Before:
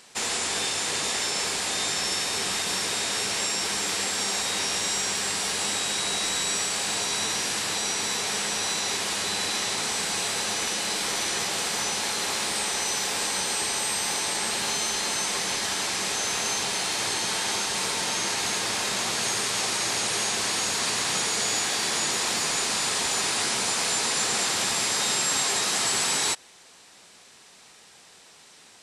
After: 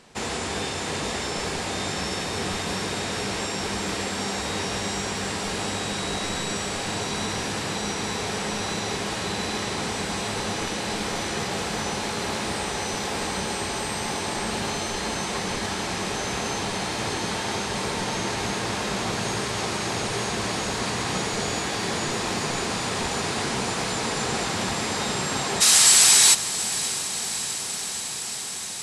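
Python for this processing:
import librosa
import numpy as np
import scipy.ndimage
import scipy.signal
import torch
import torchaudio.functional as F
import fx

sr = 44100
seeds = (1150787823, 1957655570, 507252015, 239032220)

y = fx.tilt_eq(x, sr, slope=fx.steps((0.0, -3.0), (25.6, 3.5)))
y = fx.echo_diffused(y, sr, ms=633, feedback_pct=79, wet_db=-12.5)
y = y * librosa.db_to_amplitude(1.5)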